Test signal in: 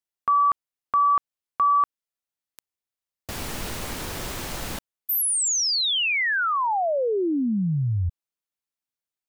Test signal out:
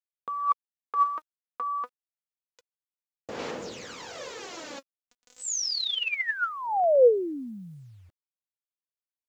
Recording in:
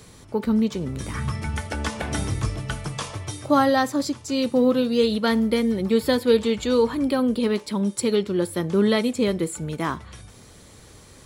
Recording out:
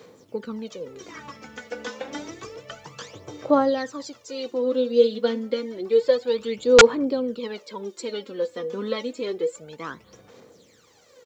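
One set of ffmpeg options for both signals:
-af "highpass=250,aphaser=in_gain=1:out_gain=1:delay=4.1:decay=0.68:speed=0.29:type=sinusoidal,equalizer=f=490:t=o:w=0.28:g=11,aresample=16000,aeval=exprs='(mod(0.596*val(0)+1,2)-1)/0.596':c=same,aresample=44100,acrusher=bits=9:mix=0:aa=0.000001,volume=0.355"

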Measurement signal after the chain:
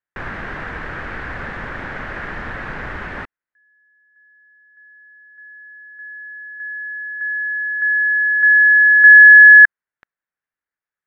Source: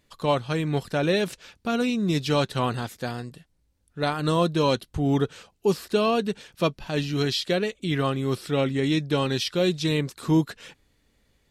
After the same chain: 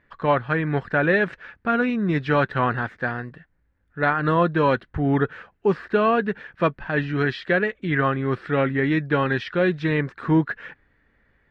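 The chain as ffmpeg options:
-af "lowpass=f=1700:t=q:w=4,volume=1.19"

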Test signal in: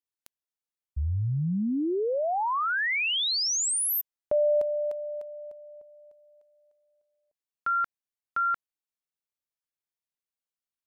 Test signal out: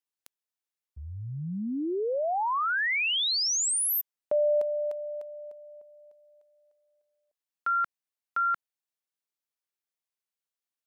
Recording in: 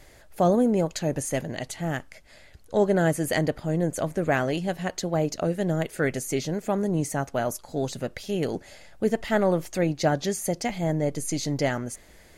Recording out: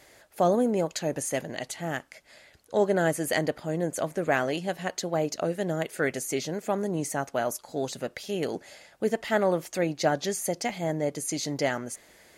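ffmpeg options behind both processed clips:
-af "highpass=f=310:p=1"

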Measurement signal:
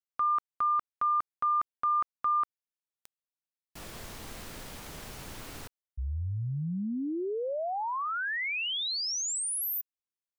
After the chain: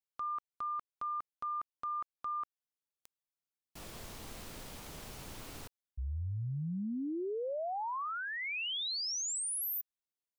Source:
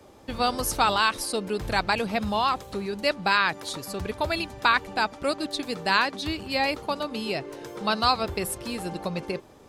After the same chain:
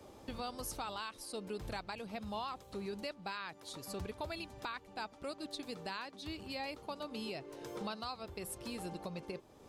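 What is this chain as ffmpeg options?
-af "acompressor=threshold=0.0316:ratio=6:attack=0.29:release=587:knee=1:detection=rms,equalizer=f=1700:t=o:w=0.77:g=-3,volume=0.668"

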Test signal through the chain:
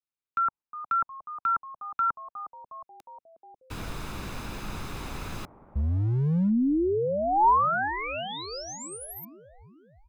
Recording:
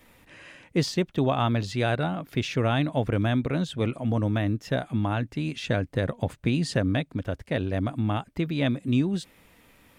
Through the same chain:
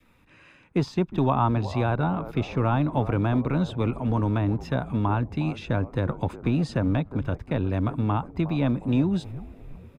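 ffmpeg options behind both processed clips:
-filter_complex "[0:a]agate=range=0.501:threshold=0.00708:ratio=16:detection=peak,highshelf=f=5200:g=-11.5,aecho=1:1:0.8:0.37,adynamicequalizer=threshold=0.00447:dfrequency=930:dqfactor=3.3:tfrequency=930:tqfactor=3.3:attack=5:release=100:ratio=0.375:range=4:mode=boostabove:tftype=bell,acrossover=split=240|1300[s0][s1][s2];[s0]asoftclip=type=hard:threshold=0.0531[s3];[s1]asplit=8[s4][s5][s6][s7][s8][s9][s10][s11];[s5]adelay=360,afreqshift=-140,volume=0.282[s12];[s6]adelay=720,afreqshift=-280,volume=0.172[s13];[s7]adelay=1080,afreqshift=-420,volume=0.105[s14];[s8]adelay=1440,afreqshift=-560,volume=0.0638[s15];[s9]adelay=1800,afreqshift=-700,volume=0.0389[s16];[s10]adelay=2160,afreqshift=-840,volume=0.0237[s17];[s11]adelay=2520,afreqshift=-980,volume=0.0145[s18];[s4][s12][s13][s14][s15][s16][s17][s18]amix=inputs=8:normalize=0[s19];[s2]acompressor=threshold=0.00891:ratio=6[s20];[s3][s19][s20]amix=inputs=3:normalize=0,volume=1.19"

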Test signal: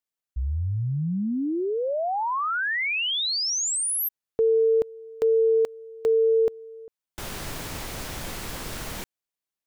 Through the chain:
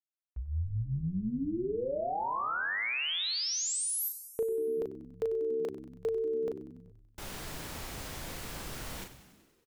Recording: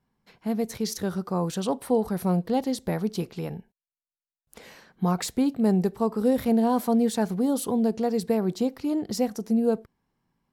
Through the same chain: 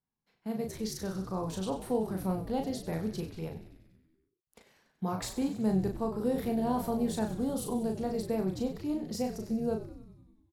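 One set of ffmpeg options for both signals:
-filter_complex "[0:a]asplit=2[s0][s1];[s1]adelay=37,volume=0.596[s2];[s0][s2]amix=inputs=2:normalize=0,agate=range=0.316:threshold=0.00708:ratio=16:release=105:detection=rms,asplit=9[s3][s4][s5][s6][s7][s8][s9][s10][s11];[s4]adelay=95,afreqshift=-69,volume=0.224[s12];[s5]adelay=190,afreqshift=-138,volume=0.146[s13];[s6]adelay=285,afreqshift=-207,volume=0.0944[s14];[s7]adelay=380,afreqshift=-276,volume=0.0617[s15];[s8]adelay=475,afreqshift=-345,volume=0.0398[s16];[s9]adelay=570,afreqshift=-414,volume=0.026[s17];[s10]adelay=665,afreqshift=-483,volume=0.0168[s18];[s11]adelay=760,afreqshift=-552,volume=0.011[s19];[s3][s12][s13][s14][s15][s16][s17][s18][s19]amix=inputs=9:normalize=0,volume=0.376"

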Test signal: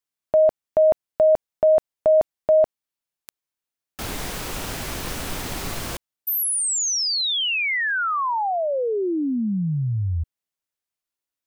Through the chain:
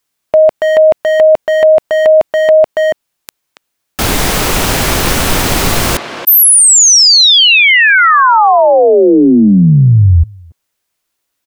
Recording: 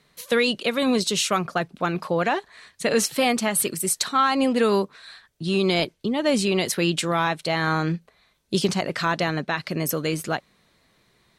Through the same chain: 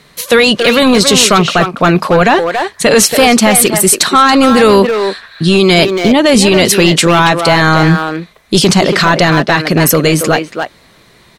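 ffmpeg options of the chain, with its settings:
-filter_complex "[0:a]asplit=2[s0][s1];[s1]adelay=280,highpass=300,lowpass=3400,asoftclip=type=hard:threshold=0.106,volume=0.447[s2];[s0][s2]amix=inputs=2:normalize=0,apsyclip=9.44,volume=0.794"

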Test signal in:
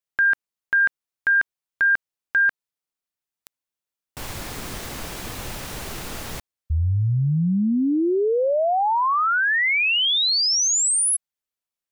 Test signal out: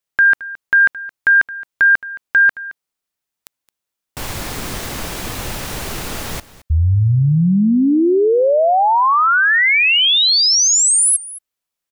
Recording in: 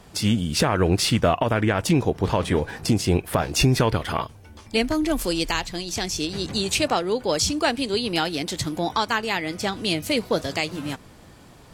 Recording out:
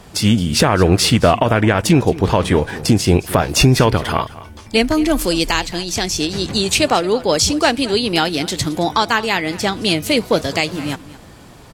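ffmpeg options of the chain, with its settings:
-af "aecho=1:1:219:0.126,volume=2.24"

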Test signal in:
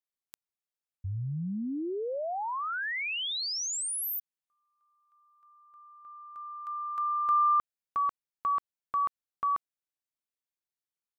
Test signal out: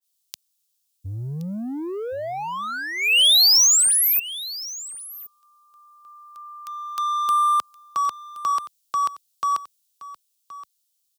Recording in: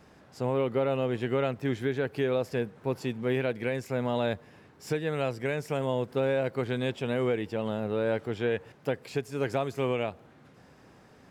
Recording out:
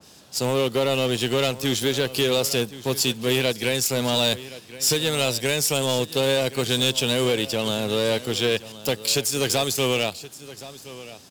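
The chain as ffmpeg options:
-filter_complex "[0:a]highpass=66,acrossover=split=180|4900[s0][s1][s2];[s2]acompressor=threshold=0.00316:ratio=10:attack=26:release=78:detection=peak[s3];[s0][s1][s3]amix=inputs=3:normalize=0,aexciter=amount=7.6:drive=4.2:freq=2900,asplit=2[s4][s5];[s5]acrusher=bits=4:mix=0:aa=0.5,volume=0.501[s6];[s4][s6]amix=inputs=2:normalize=0,asoftclip=type=hard:threshold=0.126,aecho=1:1:1072:0.15,adynamicequalizer=threshold=0.0126:dfrequency=2200:dqfactor=0.7:tfrequency=2200:tqfactor=0.7:attack=5:release=100:ratio=0.375:range=1.5:mode=boostabove:tftype=highshelf,volume=1.26"

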